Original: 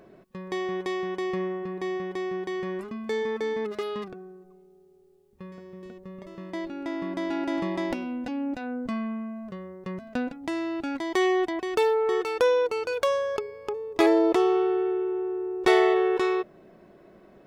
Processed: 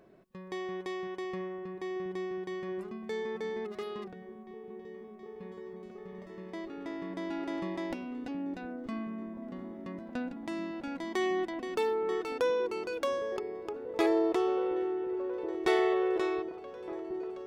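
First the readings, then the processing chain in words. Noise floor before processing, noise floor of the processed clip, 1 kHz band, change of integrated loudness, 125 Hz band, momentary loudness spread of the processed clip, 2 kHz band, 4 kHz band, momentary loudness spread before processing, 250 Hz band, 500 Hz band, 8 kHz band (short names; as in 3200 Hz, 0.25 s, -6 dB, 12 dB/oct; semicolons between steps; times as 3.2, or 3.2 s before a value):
-55 dBFS, -48 dBFS, -7.5 dB, -7.0 dB, -6.5 dB, 17 LU, -7.5 dB, -7.5 dB, 18 LU, -6.5 dB, -6.5 dB, -7.5 dB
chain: repeats that get brighter 0.722 s, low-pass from 200 Hz, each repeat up 1 oct, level -6 dB; gain -7.5 dB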